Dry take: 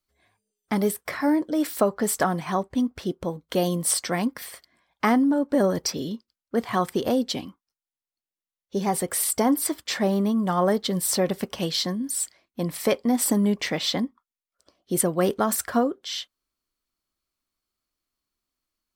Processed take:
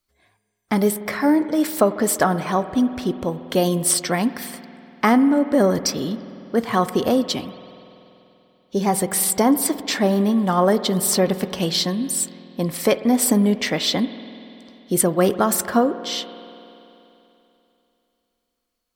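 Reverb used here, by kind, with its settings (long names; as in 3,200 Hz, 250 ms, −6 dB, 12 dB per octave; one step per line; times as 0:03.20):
spring reverb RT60 3.1 s, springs 48 ms, chirp 80 ms, DRR 12.5 dB
level +4.5 dB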